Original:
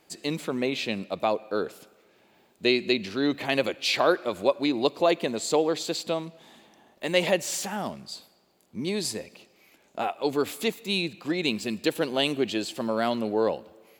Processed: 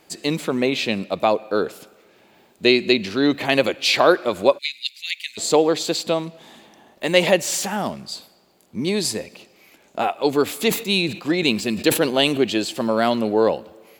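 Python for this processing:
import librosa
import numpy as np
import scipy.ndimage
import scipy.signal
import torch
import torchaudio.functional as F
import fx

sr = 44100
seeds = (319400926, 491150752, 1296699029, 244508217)

y = fx.ellip_highpass(x, sr, hz=2100.0, order=4, stop_db=50, at=(4.57, 5.37), fade=0.02)
y = fx.sustainer(y, sr, db_per_s=130.0, at=(10.5, 12.38))
y = F.gain(torch.from_numpy(y), 7.0).numpy()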